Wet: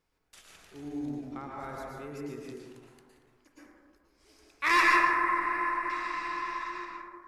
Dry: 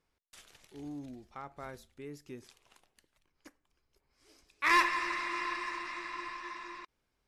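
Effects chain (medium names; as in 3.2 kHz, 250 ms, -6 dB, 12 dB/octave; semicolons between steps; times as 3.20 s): 4.96–5.90 s: high-order bell 4.6 kHz -15.5 dB; plate-style reverb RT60 1.8 s, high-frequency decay 0.25×, pre-delay 100 ms, DRR -3 dB; endings held to a fixed fall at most 150 dB/s; trim +1 dB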